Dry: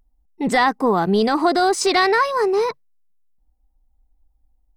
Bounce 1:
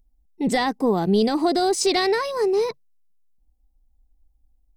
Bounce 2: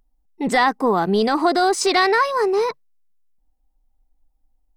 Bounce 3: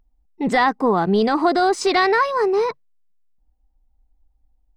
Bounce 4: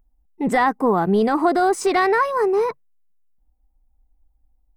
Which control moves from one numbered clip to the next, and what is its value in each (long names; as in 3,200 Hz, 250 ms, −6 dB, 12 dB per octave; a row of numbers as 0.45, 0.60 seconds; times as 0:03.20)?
parametric band, centre frequency: 1,300, 68, 14,000, 4,500 Hertz